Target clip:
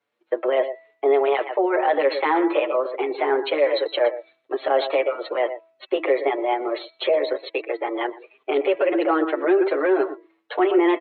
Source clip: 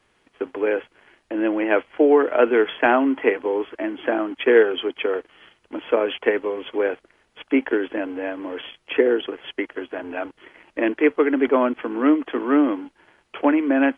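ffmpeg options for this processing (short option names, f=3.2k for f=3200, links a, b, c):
-filter_complex "[0:a]asetrate=56007,aresample=44100,highpass=230,asplit=2[a][b];[b]aecho=0:1:120:0.168[c];[a][c]amix=inputs=2:normalize=0,afftdn=nr=18:nf=-40,highshelf=f=3k:g=-11,bandreject=f=327.7:t=h:w=4,bandreject=f=655.4:t=h:w=4,bandreject=f=983.1:t=h:w=4,bandreject=f=1.3108k:t=h:w=4,bandreject=f=1.6385k:t=h:w=4,bandreject=f=1.9662k:t=h:w=4,bandreject=f=2.2939k:t=h:w=4,bandreject=f=2.6216k:t=h:w=4,alimiter=level_in=16.5dB:limit=-1dB:release=50:level=0:latency=1,asplit=2[d][e];[e]adelay=6.6,afreqshift=0.77[f];[d][f]amix=inputs=2:normalize=1,volume=-7.5dB"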